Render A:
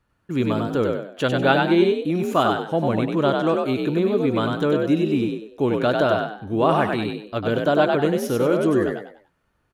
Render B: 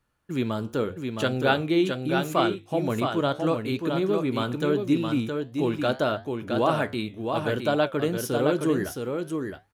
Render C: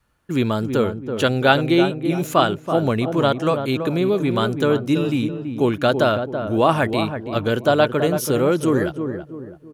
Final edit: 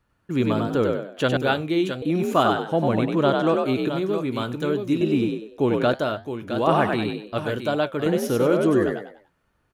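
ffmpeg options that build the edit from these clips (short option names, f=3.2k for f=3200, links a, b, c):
-filter_complex "[1:a]asplit=4[a][b][c][d];[0:a]asplit=5[e][f][g][h][i];[e]atrim=end=1.372[j];[a]atrim=start=1.368:end=2.022[k];[f]atrim=start=2.018:end=3.882[l];[b]atrim=start=3.878:end=5.012[m];[g]atrim=start=5.008:end=5.942[n];[c]atrim=start=5.938:end=6.672[o];[h]atrim=start=6.668:end=7.382[p];[d]atrim=start=7.378:end=8.062[q];[i]atrim=start=8.058[r];[j][k]acrossfade=d=0.004:c1=hsin:c2=hsin[s];[s][l]acrossfade=d=0.004:c1=hsin:c2=hsin[t];[t][m]acrossfade=d=0.004:c1=hsin:c2=hsin[u];[u][n]acrossfade=d=0.004:c1=hsin:c2=hsin[v];[v][o]acrossfade=d=0.004:c1=hsin:c2=hsin[w];[w][p]acrossfade=d=0.004:c1=hsin:c2=hsin[x];[x][q]acrossfade=d=0.004:c1=hsin:c2=hsin[y];[y][r]acrossfade=d=0.004:c1=hsin:c2=hsin"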